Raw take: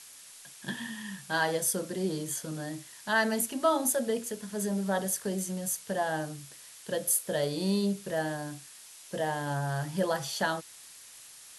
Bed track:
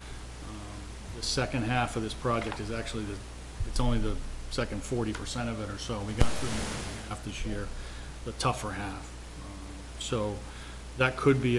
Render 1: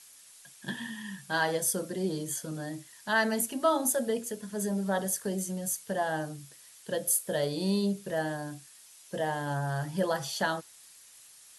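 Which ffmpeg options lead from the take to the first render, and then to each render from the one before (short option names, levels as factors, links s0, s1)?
-af "afftdn=nr=6:nf=-51"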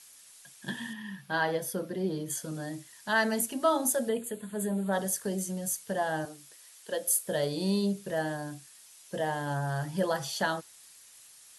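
-filter_complex "[0:a]asettb=1/sr,asplit=3[s0][s1][s2];[s0]atrim=end=0.934[s3];[s1]atrim=start=0.93:end=2.3,asetpts=PTS-STARTPTS,afade=t=in:d=0.004:c=qsin,afade=t=out:st=1.366:d=0.004:c=qsin,equalizer=f=7800:w=1:g=-14[s4];[s2]atrim=start=2.296[s5];[s3][s4]acrossfade=d=0.004:c1=hsin:c2=qsin[s6];[s6][s5]acrossfade=d=0.004:c1=qsin:c2=hsin,asettb=1/sr,asplit=3[s7][s8][s9];[s7]atrim=end=4.094[s10];[s8]atrim=start=4.09:end=4.93,asetpts=PTS-STARTPTS,afade=t=in:d=0.004:c=qsin,afade=t=out:st=0.836:d=0.004:c=qsin,asuperstop=centerf=5500:order=4:qfactor=1.7[s11];[s9]atrim=start=4.926[s12];[s10][s11]acrossfade=d=0.004:c1=hsin:c2=qsin[s13];[s13][s12]acrossfade=d=0.004:c1=qsin:c2=hsin,asettb=1/sr,asplit=3[s14][s15][s16];[s14]atrim=end=6.254[s17];[s15]atrim=start=6.25:end=7.24,asetpts=PTS-STARTPTS,afade=t=in:d=0.004:c=qsin,afade=t=out:st=0.986:d=0.004:c=qsin,highpass=340[s18];[s16]atrim=start=7.236[s19];[s17][s18]acrossfade=d=0.004:c1=hsin:c2=qsin[s20];[s20][s19]acrossfade=d=0.004:c1=qsin:c2=hsin"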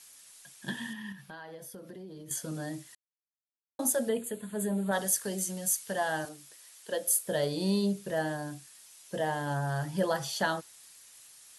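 -filter_complex "[0:a]asettb=1/sr,asplit=3[s0][s1][s2];[s0]atrim=end=1.124[s3];[s1]atrim=start=1.12:end=2.31,asetpts=PTS-STARTPTS,afade=t=in:d=0.004:c=qsin,afade=t=out:st=1.186:d=0.004:c=qsin,acompressor=threshold=0.00708:ratio=6:attack=3.2:release=140:knee=1:detection=peak[s4];[s2]atrim=start=2.306[s5];[s3][s4]acrossfade=d=0.004:c1=hsin:c2=qsin[s6];[s6][s5]acrossfade=d=0.004:c1=qsin:c2=hsin,asettb=1/sr,asplit=3[s7][s8][s9];[s7]atrim=end=4.914[s10];[s8]atrim=start=4.91:end=6.29,asetpts=PTS-STARTPTS,afade=t=in:d=0.004:c=qsin,afade=t=out:st=1.376:d=0.004:c=qsin,tiltshelf=f=880:g=-4[s11];[s9]atrim=start=6.286[s12];[s10][s11]acrossfade=d=0.004:c1=hsin:c2=qsin[s13];[s13][s12]acrossfade=d=0.004:c1=qsin:c2=hsin,asplit=3[s14][s15][s16];[s14]atrim=end=2.95,asetpts=PTS-STARTPTS,afade=t=out:st=2.946:d=0.004:c=hsin[s17];[s15]atrim=start=2.95:end=3.79,asetpts=PTS-STARTPTS,volume=0[s18];[s16]atrim=start=3.79,asetpts=PTS-STARTPTS,afade=t=in:d=0.004:c=hsin[s19];[s17][s18][s19]concat=n=3:v=0:a=1"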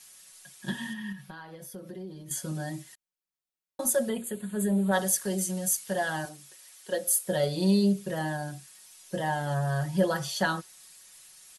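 -af "lowshelf=f=110:g=6,aecho=1:1:5.4:0.69"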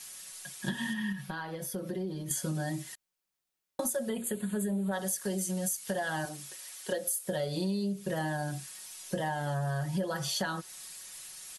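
-filter_complex "[0:a]asplit=2[s0][s1];[s1]alimiter=limit=0.075:level=0:latency=1:release=149,volume=1.06[s2];[s0][s2]amix=inputs=2:normalize=0,acompressor=threshold=0.0316:ratio=6"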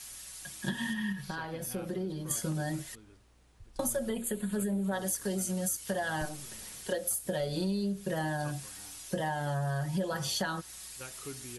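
-filter_complex "[1:a]volume=0.0891[s0];[0:a][s0]amix=inputs=2:normalize=0"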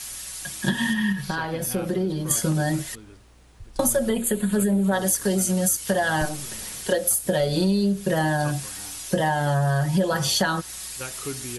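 -af "volume=3.35"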